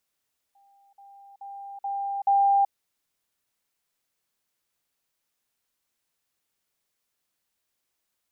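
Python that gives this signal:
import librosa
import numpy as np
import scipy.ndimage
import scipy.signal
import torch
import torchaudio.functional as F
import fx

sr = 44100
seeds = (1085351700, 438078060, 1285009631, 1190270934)

y = fx.level_ladder(sr, hz=796.0, from_db=-57.0, step_db=10.0, steps=5, dwell_s=0.38, gap_s=0.05)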